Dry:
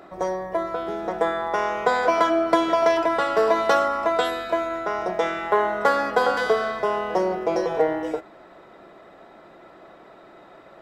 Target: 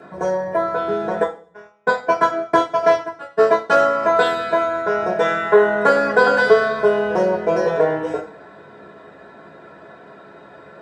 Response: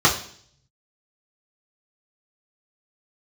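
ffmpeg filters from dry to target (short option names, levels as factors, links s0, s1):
-filter_complex "[0:a]asplit=3[s0][s1][s2];[s0]afade=t=out:st=1.22:d=0.02[s3];[s1]agate=range=0.01:threshold=0.126:ratio=16:detection=peak,afade=t=in:st=1.22:d=0.02,afade=t=out:st=3.72:d=0.02[s4];[s2]afade=t=in:st=3.72:d=0.02[s5];[s3][s4][s5]amix=inputs=3:normalize=0[s6];[1:a]atrim=start_sample=2205,asetrate=57330,aresample=44100[s7];[s6][s7]afir=irnorm=-1:irlink=0,volume=0.2"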